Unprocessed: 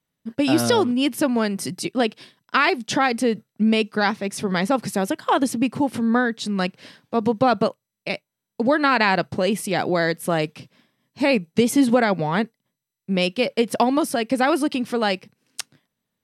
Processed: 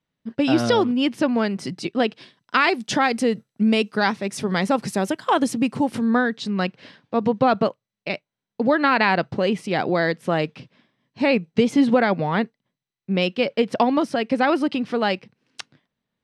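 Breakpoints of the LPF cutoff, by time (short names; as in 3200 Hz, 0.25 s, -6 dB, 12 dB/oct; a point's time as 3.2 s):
2.05 s 4600 Hz
2.77 s 10000 Hz
5.97 s 10000 Hz
6.54 s 4200 Hz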